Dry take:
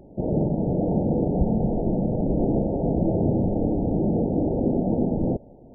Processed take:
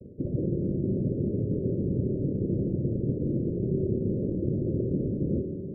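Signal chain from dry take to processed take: high-pass 190 Hz; hum notches 50/100/150/200/250 Hz; noise-vocoded speech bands 3; reverse; compression 6:1, threshold -34 dBFS, peak gain reduction 14.5 dB; reverse; steep low-pass 580 Hz 72 dB/octave; tilt EQ -4 dB/octave; on a send: reverberation RT60 2.6 s, pre-delay 3 ms, DRR 6.5 dB

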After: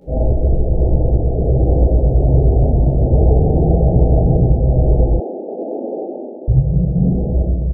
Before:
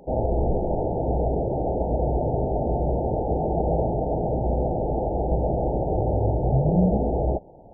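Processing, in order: spectral contrast enhancement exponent 1.7; in parallel at -2 dB: peak limiter -19 dBFS, peak gain reduction 7 dB; on the sum: peaking EQ 850 Hz -10.5 dB 2.2 oct; speakerphone echo 100 ms, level -29 dB; reverberation RT60 1.3 s, pre-delay 14 ms, DRR -9 dB; level rider gain up to 12 dB; 1.57–3.07 s: word length cut 12-bit, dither triangular; 5.20–6.48 s: steep high-pass 220 Hz 72 dB/octave; trim -1 dB

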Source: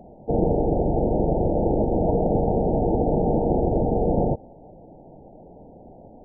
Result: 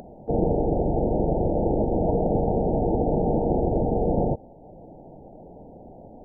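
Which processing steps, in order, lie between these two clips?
upward compressor, threshold -37 dBFS; trim -1.5 dB

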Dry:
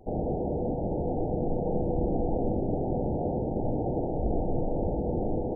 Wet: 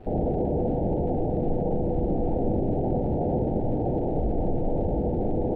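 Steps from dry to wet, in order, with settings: peak limiter -24 dBFS, peak gain reduction 8 dB; crackle 510 per s -47 dBFS; distance through air 490 m; trim +7.5 dB

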